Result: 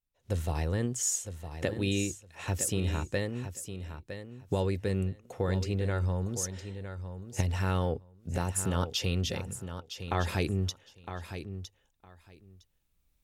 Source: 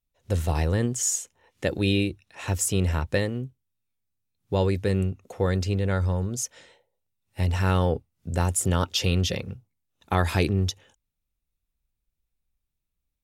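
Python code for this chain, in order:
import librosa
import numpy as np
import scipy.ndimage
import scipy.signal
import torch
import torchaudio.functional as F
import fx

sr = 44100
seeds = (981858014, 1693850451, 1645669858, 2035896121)

y = fx.recorder_agc(x, sr, target_db=-12.0, rise_db_per_s=5.9, max_gain_db=30)
y = fx.lowpass(y, sr, hz=6800.0, slope=12, at=(9.53, 10.24))
y = fx.echo_feedback(y, sr, ms=960, feedback_pct=16, wet_db=-10.0)
y = y * librosa.db_to_amplitude(-7.0)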